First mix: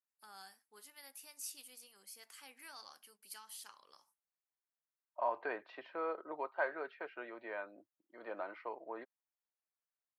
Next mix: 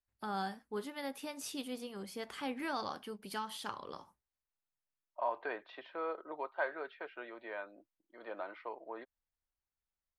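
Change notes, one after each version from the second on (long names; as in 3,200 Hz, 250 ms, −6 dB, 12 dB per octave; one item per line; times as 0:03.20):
first voice: remove first difference
master: add parametric band 3,500 Hz +8.5 dB 0.3 octaves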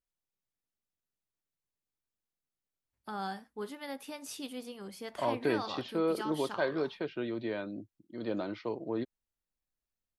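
first voice: entry +2.85 s
second voice: remove flat-topped band-pass 1,200 Hz, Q 0.79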